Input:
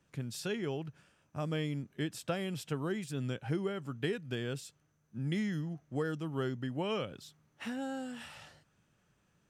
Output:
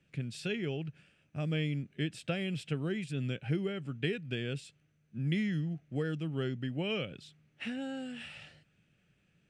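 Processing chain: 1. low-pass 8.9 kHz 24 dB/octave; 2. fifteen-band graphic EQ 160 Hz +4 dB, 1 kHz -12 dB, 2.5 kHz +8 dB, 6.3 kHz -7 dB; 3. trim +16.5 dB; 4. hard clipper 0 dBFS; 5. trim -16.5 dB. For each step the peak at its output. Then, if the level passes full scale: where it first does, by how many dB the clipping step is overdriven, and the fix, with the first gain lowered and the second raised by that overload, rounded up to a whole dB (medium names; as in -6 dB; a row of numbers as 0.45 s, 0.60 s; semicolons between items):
-22.0 dBFS, -19.5 dBFS, -3.0 dBFS, -3.0 dBFS, -19.5 dBFS; nothing clips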